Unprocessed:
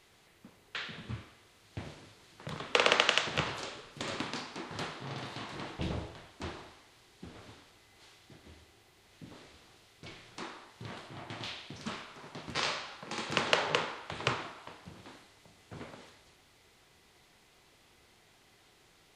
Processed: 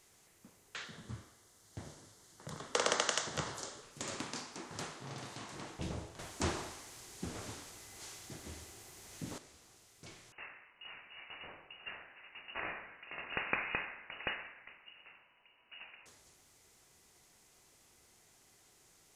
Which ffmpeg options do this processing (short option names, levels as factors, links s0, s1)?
-filter_complex "[0:a]asettb=1/sr,asplit=3[s0][s1][s2];[s0]atrim=end=0.844[s3];[s1]atrim=start=0.84:end=3.83,asetpts=PTS-STARTPTS,afade=t=in:d=0.004:c=qsin,afade=t=out:st=2.986:d=0.004:c=qsin,equalizer=f=2500:t=o:w=0.26:g=-12[s4];[s2]atrim=start=3.826[s5];[s3][s4]acrossfade=d=0.004:c1=hsin:c2=qsin[s6];[s6][s5]acrossfade=d=0.004:c1=qsin:c2=hsin,asettb=1/sr,asplit=3[s7][s8][s9];[s7]atrim=end=10.324[s10];[s8]atrim=start=10.32:end=16.06,asetpts=PTS-STARTPTS,afade=t=in:d=0.004:c=qsin,afade=t=out:st=5.736:d=0.004:c=qsin,lowpass=f=2600:t=q:w=0.5098,lowpass=f=2600:t=q:w=0.6013,lowpass=f=2600:t=q:w=0.9,lowpass=f=2600:t=q:w=2.563,afreqshift=-3000[s11];[s9]atrim=start=16.056[s12];[s10][s11]acrossfade=d=0.004:c1=hsin:c2=qsin[s13];[s13][s12]acrossfade=d=0.004:c1=qsin:c2=hsin,asplit=3[s14][s15][s16];[s14]atrim=end=6.192[s17];[s15]atrim=start=6.188:end=9.382,asetpts=PTS-STARTPTS,volume=3.55[s18];[s16]atrim=start=9.378[s19];[s17][s18]acrossfade=d=0.004:c1=hsin:c2=hsin[s20];[s20][s19]acrossfade=d=0.004:c1=hsin:c2=hsin,highshelf=f=5000:t=q:w=1.5:g=8.5,volume=0.562"